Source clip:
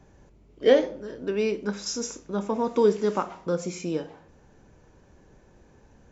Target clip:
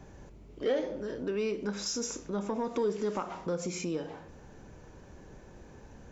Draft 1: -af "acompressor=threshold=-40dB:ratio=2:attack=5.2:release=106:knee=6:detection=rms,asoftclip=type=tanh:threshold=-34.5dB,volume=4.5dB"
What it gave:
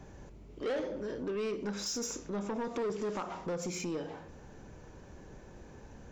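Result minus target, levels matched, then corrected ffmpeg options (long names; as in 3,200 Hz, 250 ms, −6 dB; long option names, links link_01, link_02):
soft clipping: distortion +11 dB
-af "acompressor=threshold=-40dB:ratio=2:attack=5.2:release=106:knee=6:detection=rms,asoftclip=type=tanh:threshold=-25dB,volume=4.5dB"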